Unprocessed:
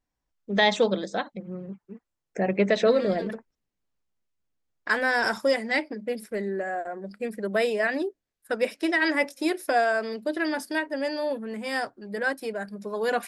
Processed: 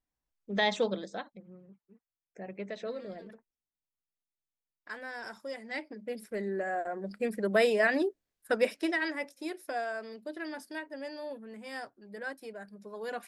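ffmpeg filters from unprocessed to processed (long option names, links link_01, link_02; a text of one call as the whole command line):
ffmpeg -i in.wav -af "volume=10dB,afade=type=out:start_time=0.84:duration=0.77:silence=0.298538,afade=type=in:start_time=5.48:duration=0.48:silence=0.398107,afade=type=in:start_time=5.96:duration=1.17:silence=0.354813,afade=type=out:start_time=8.53:duration=0.61:silence=0.266073" out.wav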